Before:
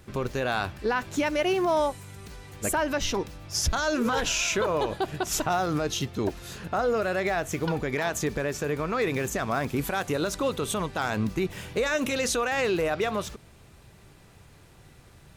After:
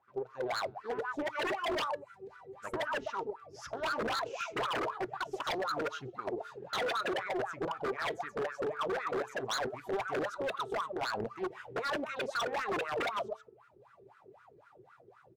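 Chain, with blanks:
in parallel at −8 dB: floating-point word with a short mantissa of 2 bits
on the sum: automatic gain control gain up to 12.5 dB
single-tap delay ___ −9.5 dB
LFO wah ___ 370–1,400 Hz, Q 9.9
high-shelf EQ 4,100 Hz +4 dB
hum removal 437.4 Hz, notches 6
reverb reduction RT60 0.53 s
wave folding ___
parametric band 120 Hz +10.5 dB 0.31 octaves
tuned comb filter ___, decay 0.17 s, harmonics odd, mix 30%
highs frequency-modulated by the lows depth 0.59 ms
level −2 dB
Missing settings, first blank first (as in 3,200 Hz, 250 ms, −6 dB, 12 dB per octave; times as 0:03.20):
129 ms, 3.9 Hz, −23.5 dBFS, 130 Hz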